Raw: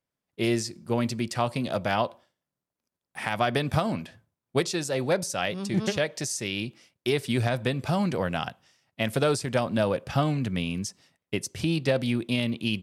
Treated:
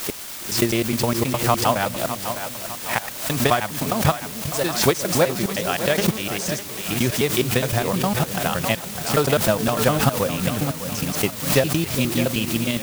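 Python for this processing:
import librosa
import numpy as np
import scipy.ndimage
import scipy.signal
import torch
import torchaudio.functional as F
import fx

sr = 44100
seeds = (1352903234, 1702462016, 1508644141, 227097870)

p1 = fx.block_reorder(x, sr, ms=103.0, group=4)
p2 = scipy.signal.sosfilt(scipy.signal.butter(2, 8800.0, 'lowpass', fs=sr, output='sos'), p1)
p3 = fx.peak_eq(p2, sr, hz=1100.0, db=3.5, octaves=0.77)
p4 = fx.quant_dither(p3, sr, seeds[0], bits=6, dither='triangular')
p5 = p4 + fx.echo_split(p4, sr, split_hz=460.0, low_ms=403, high_ms=604, feedback_pct=52, wet_db=-8, dry=0)
p6 = fx.transient(p5, sr, attack_db=6, sustain_db=-4)
p7 = fx.pre_swell(p6, sr, db_per_s=92.0)
y = p7 * 10.0 ** (2.0 / 20.0)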